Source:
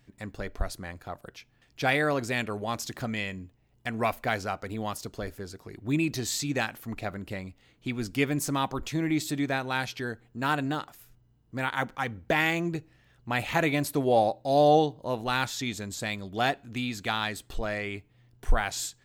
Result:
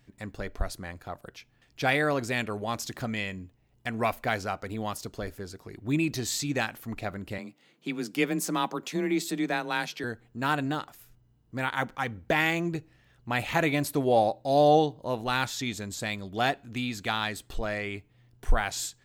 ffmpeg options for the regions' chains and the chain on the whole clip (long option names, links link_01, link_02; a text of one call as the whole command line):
ffmpeg -i in.wav -filter_complex "[0:a]asettb=1/sr,asplit=3[link_01][link_02][link_03];[link_01]atrim=end=7.384[link_04];[link_02]atrim=start=7.38:end=10.04,asetpts=PTS-STARTPTS,afade=type=in:duration=0.004:curve=qsin,afade=type=out:start_time=2.656:duration=0.004:curve=qsin,highpass=frequency=150:width=0.5412,highpass=frequency=150:width=1.3066,afreqshift=23[link_05];[link_03]atrim=start=10.036[link_06];[link_04][link_05]acrossfade=duration=0.004:curve1=hsin:curve2=qsin[link_07];[link_07][link_06]acrossfade=duration=0.004:curve1=qsin:curve2=hsin" out.wav